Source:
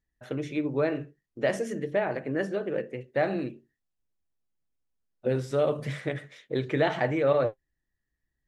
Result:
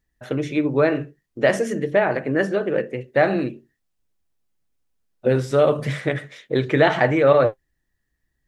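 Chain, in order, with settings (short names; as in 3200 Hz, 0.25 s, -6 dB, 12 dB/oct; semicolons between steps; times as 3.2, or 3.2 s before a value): dynamic EQ 1400 Hz, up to +3 dB, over -40 dBFS, Q 1.2; gain +8 dB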